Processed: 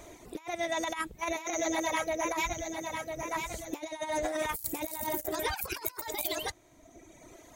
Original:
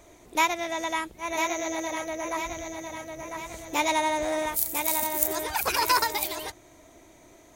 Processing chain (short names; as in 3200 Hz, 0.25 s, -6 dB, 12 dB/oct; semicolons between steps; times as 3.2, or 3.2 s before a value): reverb removal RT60 1.4 s; 4.6–5.4 low shelf 320 Hz +7.5 dB; negative-ratio compressor -33 dBFS, ratio -0.5